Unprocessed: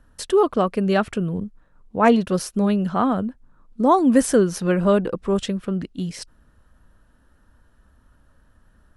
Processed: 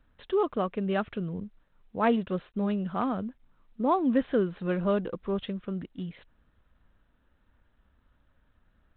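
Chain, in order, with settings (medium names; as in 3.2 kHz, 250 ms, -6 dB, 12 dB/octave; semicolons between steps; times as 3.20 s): trim -9 dB; G.726 32 kbps 8 kHz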